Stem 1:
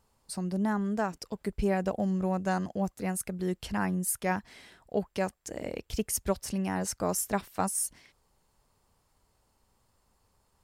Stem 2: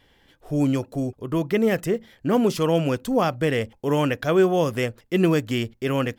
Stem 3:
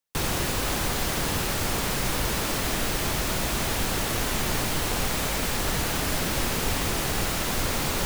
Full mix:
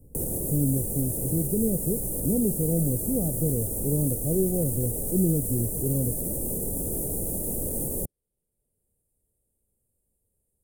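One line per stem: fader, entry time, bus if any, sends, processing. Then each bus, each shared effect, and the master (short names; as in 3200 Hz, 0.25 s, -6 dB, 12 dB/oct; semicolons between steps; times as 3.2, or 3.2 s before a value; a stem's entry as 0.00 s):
-18.5 dB, 0.00 s, no send, dry
-9.5 dB, 0.00 s, no send, tone controls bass +13 dB, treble -1 dB
-3.5 dB, 0.00 s, no send, limiter -18 dBFS, peak gain reduction 4.5 dB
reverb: off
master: elliptic band-stop 520–9100 Hz, stop band 80 dB; bell 12000 Hz +10 dB 1.7 oct; three-band squash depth 40%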